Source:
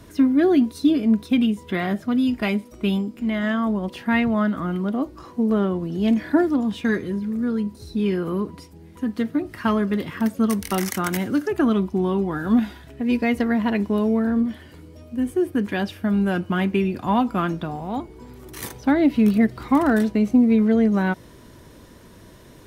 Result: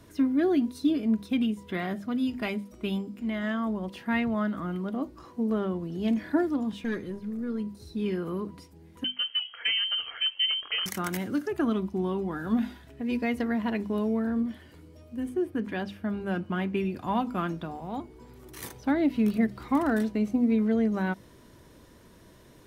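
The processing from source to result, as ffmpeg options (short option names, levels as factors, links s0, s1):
-filter_complex "[0:a]asettb=1/sr,asplit=3[s0][s1][s2];[s0]atrim=end=6.724[s3];[s1]atrim=start=6.72:end=7.6,asetpts=PTS-STARTPTS,afade=t=in:d=0.004:c=qsin,afade=t=out:st=0.876:d=0.004:c=qsin,aeval=exprs='(tanh(6.31*val(0)+0.35)-tanh(0.35))/6.31':c=same[s4];[s2]atrim=start=7.596[s5];[s3][s4]acrossfade=d=0.004:c1=hsin:c2=qsin[s6];[s6][s5]acrossfade=d=0.004:c1=qsin:c2=hsin,asettb=1/sr,asplit=3[s7][s8][s9];[s7]atrim=end=9.044[s10];[s8]atrim=start=9.04:end=10.86,asetpts=PTS-STARTPTS,afade=t=in:d=0.004:c=qsin,afade=t=out:st=1.816:d=0.004:c=qsin,lowpass=f=2800:t=q:w=0.5098,lowpass=f=2800:t=q:w=0.6013,lowpass=f=2800:t=q:w=0.9,lowpass=f=2800:t=q:w=2.563,afreqshift=-3300[s11];[s9]atrim=start=10.856[s12];[s10][s11]acrossfade=d=0.004:c1=hsin:c2=qsin[s13];[s13][s12]acrossfade=d=0.004:c1=qsin:c2=hsin,asettb=1/sr,asplit=3[s14][s15][s16];[s14]atrim=end=15.294[s17];[s15]atrim=start=15.29:end=16.77,asetpts=PTS-STARTPTS,afade=t=in:d=0.004:c=qsin,afade=t=out:st=1.476:d=0.004:c=qsin,highshelf=f=5100:g=-8[s18];[s16]atrim=start=16.766[s19];[s17][s18]acrossfade=d=0.004:c1=hsin:c2=qsin[s20];[s20][s19]acrossfade=d=0.004:c1=qsin:c2=hsin,bandreject=f=50:t=h:w=6,bandreject=f=100:t=h:w=6,bandreject=f=150:t=h:w=6,bandreject=f=200:t=h:w=6,bandreject=f=250:t=h:w=6,volume=0.447"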